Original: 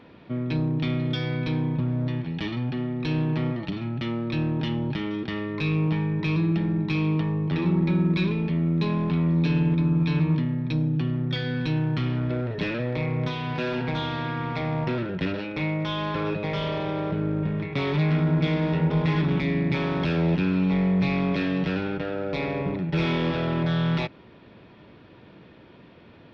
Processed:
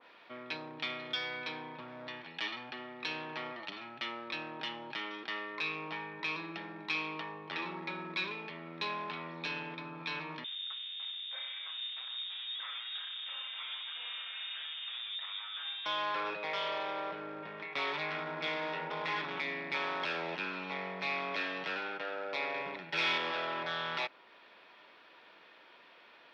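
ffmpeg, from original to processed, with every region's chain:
ffmpeg -i in.wav -filter_complex "[0:a]asettb=1/sr,asplit=3[link_01][link_02][link_03];[link_01]atrim=end=10.444[link_04];[link_02]atrim=start=10.44:end=15.86,asetpts=PTS-STARTPTS,afade=type=in:duration=0.004:curve=qsin,afade=type=out:start_time=5.416:duration=0.004:curve=qsin,asoftclip=type=hard:threshold=-33.5dB,flanger=delay=4.5:depth=6.3:regen=45:speed=1.3:shape=sinusoidal,lowpass=frequency=3200:width_type=q:width=0.5098,lowpass=frequency=3200:width_type=q:width=0.6013,lowpass=frequency=3200:width_type=q:width=0.9,lowpass=frequency=3200:width_type=q:width=2.563,afreqshift=-3800[link_05];[link_03]atrim=start=15.856[link_06];[link_04][link_05]acrossfade=duration=0.004:curve1=hsin:curve2=qsin[link_07];[link_07][link_06]acrossfade=duration=0.004:curve1=qsin:curve2=hsin,asettb=1/sr,asplit=3[link_08][link_09][link_10];[link_08]atrim=end=22.544[link_11];[link_09]atrim=start=22.54:end=23.18,asetpts=PTS-STARTPTS,afade=type=in:duration=0.004:curve=qsin,afade=type=out:start_time=0.636:duration=0.004:curve=qsin,equalizer=frequency=530:width=0.36:gain=-6,bandreject=frequency=1200:width=11,acontrast=29[link_12];[link_10]atrim=start=23.176[link_13];[link_11][link_12]acrossfade=duration=0.004:curve1=hsin:curve2=qsin[link_14];[link_14][link_13]acrossfade=duration=0.004:curve1=qsin:curve2=hsin,highpass=920,adynamicequalizer=threshold=0.00398:dfrequency=1600:dqfactor=0.7:tfrequency=1600:tqfactor=0.7:attack=5:release=100:ratio=0.375:range=1.5:mode=cutabove:tftype=highshelf" out.wav

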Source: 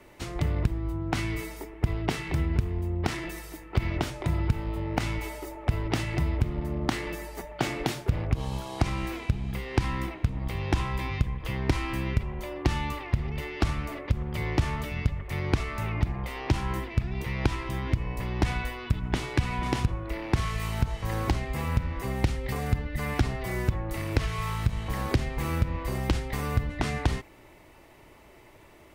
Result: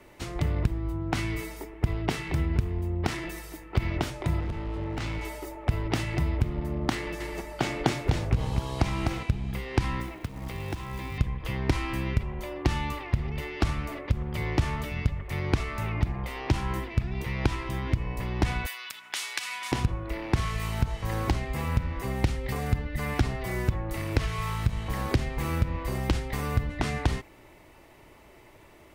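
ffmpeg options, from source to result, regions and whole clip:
ffmpeg -i in.wav -filter_complex "[0:a]asettb=1/sr,asplit=3[link_01][link_02][link_03];[link_01]atrim=end=4.404[link_04];[link_02]atrim=start=4.4:end=5.25,asetpts=PTS-STARTPTS,afade=type=in:duration=0.004:curve=qsin,afade=type=out:start_time=0.846:duration=0.004:curve=qsin,lowpass=6000,asoftclip=type=hard:threshold=-28dB[link_05];[link_03]atrim=start=5.246[link_06];[link_04][link_05]acrossfade=duration=0.004:curve1=hsin:curve2=qsin[link_07];[link_07][link_06]acrossfade=duration=0.004:curve1=qsin:curve2=hsin,asettb=1/sr,asplit=3[link_08][link_09][link_10];[link_08]atrim=end=6.954[link_11];[link_09]atrim=start=6.95:end=9.23,asetpts=PTS-STARTPTS,afade=type=in:duration=0.004:curve=qsin,afade=type=out:start_time=2.276:duration=0.004:curve=qsin,acrossover=split=9600[link_12][link_13];[link_13]acompressor=threshold=-58dB:ratio=4:attack=1:release=60[link_14];[link_12][link_14]amix=inputs=2:normalize=0,aecho=1:1:252:0.631,atrim=end_sample=100548[link_15];[link_10]atrim=start=9.226[link_16];[link_11][link_15]acrossfade=duration=0.004:curve1=hsin:curve2=qsin[link_17];[link_17][link_16]acrossfade=duration=0.004:curve1=qsin:curve2=hsin,asettb=1/sr,asplit=3[link_18][link_19][link_20];[link_18]atrim=end=10.004[link_21];[link_19]atrim=start=10:end=11.18,asetpts=PTS-STARTPTS,afade=type=in:duration=0.004:curve=qsin,afade=type=out:start_time=1.176:duration=0.004:curve=qsin,acrossover=split=140|390[link_22][link_23][link_24];[link_22]acompressor=threshold=-36dB:ratio=4[link_25];[link_23]acompressor=threshold=-38dB:ratio=4[link_26];[link_24]acompressor=threshold=-39dB:ratio=4[link_27];[link_25][link_26][link_27]amix=inputs=3:normalize=0,acrusher=bits=5:mode=log:mix=0:aa=0.000001[link_28];[link_20]atrim=start=11.176[link_29];[link_21][link_28]acrossfade=duration=0.004:curve1=hsin:curve2=qsin[link_30];[link_30][link_29]acrossfade=duration=0.004:curve1=qsin:curve2=hsin,asettb=1/sr,asplit=3[link_31][link_32][link_33];[link_31]atrim=end=18.664[link_34];[link_32]atrim=start=18.66:end=19.72,asetpts=PTS-STARTPTS,afade=type=in:duration=0.004:curve=qsin,afade=type=out:start_time=1.056:duration=0.004:curve=qsin,highpass=1300,highshelf=frequency=3900:gain=12[link_35];[link_33]atrim=start=19.716[link_36];[link_34][link_35]acrossfade=duration=0.004:curve1=hsin:curve2=qsin[link_37];[link_37][link_36]acrossfade=duration=0.004:curve1=qsin:curve2=hsin" out.wav

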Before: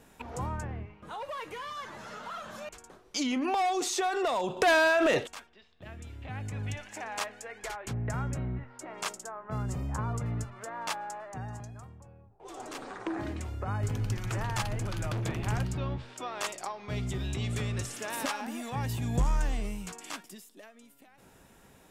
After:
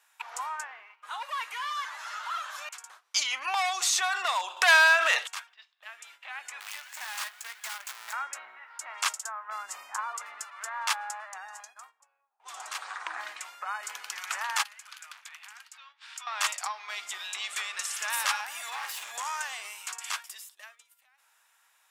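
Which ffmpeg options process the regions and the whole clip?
ffmpeg -i in.wav -filter_complex "[0:a]asettb=1/sr,asplit=3[link_01][link_02][link_03];[link_01]atrim=end=6.604[link_04];[link_02]atrim=start=6.6:end=8.13,asetpts=PTS-STARTPTS,afade=type=in:duration=0.004:curve=qsin,afade=type=out:start_time=1.526:duration=0.004:curve=qsin,acrusher=bits=7:dc=4:mix=0:aa=0.000001,aeval=exprs='(tanh(70.8*val(0)+0.3)-tanh(0.3))/70.8':channel_layout=same,asplit=2[link_05][link_06];[link_06]adelay=15,volume=-11dB[link_07];[link_05][link_07]amix=inputs=2:normalize=0,atrim=end_sample=67473[link_08];[link_03]atrim=start=8.126[link_09];[link_04][link_08]acrossfade=duration=0.004:curve1=hsin:curve2=qsin[link_10];[link_10][link_09]acrossfade=duration=0.004:curve1=qsin:curve2=hsin,asettb=1/sr,asplit=3[link_11][link_12][link_13];[link_11]atrim=end=14.634[link_14];[link_12]atrim=start=14.63:end=16.27,asetpts=PTS-STARTPTS,afade=type=in:duration=0.004:curve=qsin,afade=type=out:start_time=1.636:duration=0.004:curve=qsin,acompressor=threshold=-40dB:ratio=12:attack=3.2:release=140:knee=1:detection=peak,highpass=1300[link_15];[link_13]atrim=start=16.266[link_16];[link_14][link_15]acrossfade=duration=0.004:curve1=hsin:curve2=qsin[link_17];[link_17][link_16]acrossfade=duration=0.004:curve1=qsin:curve2=hsin,asettb=1/sr,asplit=3[link_18][link_19][link_20];[link_18]atrim=end=18.674[link_21];[link_19]atrim=start=18.67:end=19.12,asetpts=PTS-STARTPTS,afade=type=in:duration=0.004:curve=qsin,afade=type=out:start_time=0.446:duration=0.004:curve=qsin,highpass=110,asoftclip=type=hard:threshold=-35dB,asplit=2[link_22][link_23];[link_23]adelay=49,volume=-3.5dB[link_24];[link_22][link_24]amix=inputs=2:normalize=0,atrim=end_sample=19845[link_25];[link_20]atrim=start=19.116[link_26];[link_21][link_25]acrossfade=duration=0.004:curve1=hsin:curve2=qsin[link_27];[link_27][link_26]acrossfade=duration=0.004:curve1=qsin:curve2=hsin,highpass=frequency=1000:width=0.5412,highpass=frequency=1000:width=1.3066,agate=range=-11dB:threshold=-60dB:ratio=16:detection=peak,volume=7.5dB" out.wav

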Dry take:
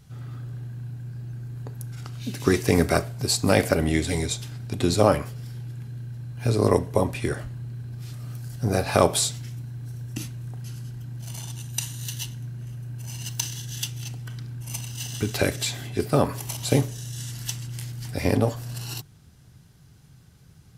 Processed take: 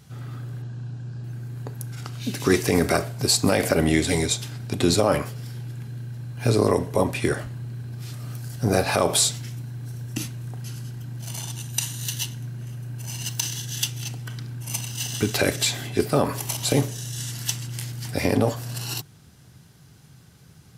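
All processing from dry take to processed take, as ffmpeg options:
ffmpeg -i in.wav -filter_complex "[0:a]asettb=1/sr,asplit=3[link_01][link_02][link_03];[link_01]atrim=end=0.624[link_04];[link_02]atrim=start=0.62:end=1.24,asetpts=PTS-STARTPTS,afade=type=in:duration=0.004:curve=qsin,afade=type=out:start_time=0.616:duration=0.004:curve=qsin,lowpass=frequency=7300:width=0.5412,lowpass=frequency=7300:width=1.3066,equalizer=frequency=2100:width=5.5:gain=-11[link_05];[link_03]atrim=start=1.236[link_06];[link_04][link_05]acrossfade=duration=0.004:curve1=hsin:curve2=qsin[link_07];[link_07][link_06]acrossfade=duration=0.004:curve1=qsin:curve2=hsin,highpass=frequency=140:poles=1,alimiter=level_in=12dB:limit=-1dB:release=50:level=0:latency=1,volume=-7dB" out.wav

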